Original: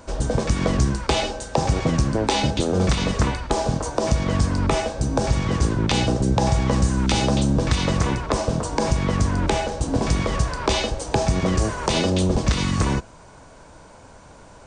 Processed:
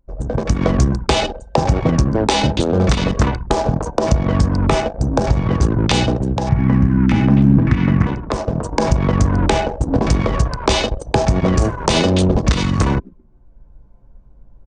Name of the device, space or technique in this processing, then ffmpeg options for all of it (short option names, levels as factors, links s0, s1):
voice memo with heavy noise removal: -filter_complex "[0:a]asettb=1/sr,asplit=3[s0][s1][s2];[s0]atrim=end=6.494[s3];[s1]atrim=start=6.49:end=8.07,asetpts=PTS-STARTPTS,afade=t=in:d=0.004:c=qsin,afade=t=out:st=1.576:d=0.004:c=qsin,equalizer=f=125:t=o:w=1:g=7,equalizer=f=250:t=o:w=1:g=11,equalizer=f=500:t=o:w=1:g=-9,equalizer=f=2000:t=o:w=1:g=8,equalizer=f=4000:t=o:w=1:g=-11,equalizer=f=8000:t=o:w=1:g=-12[s4];[s2]atrim=start=8.066[s5];[s3][s4]acrossfade=d=0.004:c1=hsin:c2=qsin[s6];[s6][s5]acrossfade=d=0.004:c1=qsin:c2=hsin,asplit=5[s7][s8][s9][s10][s11];[s8]adelay=129,afreqshift=54,volume=0.141[s12];[s9]adelay=258,afreqshift=108,volume=0.0661[s13];[s10]adelay=387,afreqshift=162,volume=0.0313[s14];[s11]adelay=516,afreqshift=216,volume=0.0146[s15];[s7][s12][s13][s14][s15]amix=inputs=5:normalize=0,anlmdn=398,dynaudnorm=f=160:g=5:m=5.31,volume=0.891"